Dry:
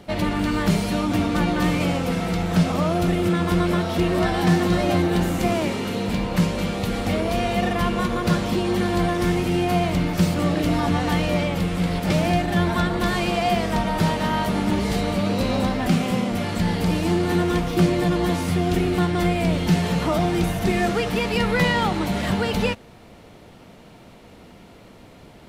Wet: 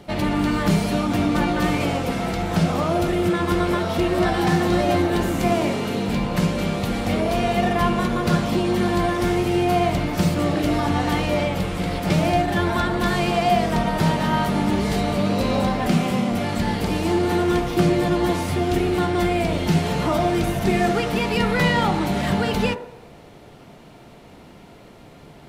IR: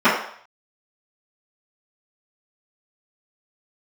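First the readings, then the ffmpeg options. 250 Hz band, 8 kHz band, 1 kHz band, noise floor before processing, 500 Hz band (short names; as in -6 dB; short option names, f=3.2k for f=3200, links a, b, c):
+0.5 dB, 0.0 dB, +2.5 dB, -46 dBFS, +1.5 dB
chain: -filter_complex "[0:a]asplit=2[a][b];[1:a]atrim=start_sample=2205,asetrate=30870,aresample=44100[c];[b][c]afir=irnorm=-1:irlink=0,volume=-33.5dB[d];[a][d]amix=inputs=2:normalize=0"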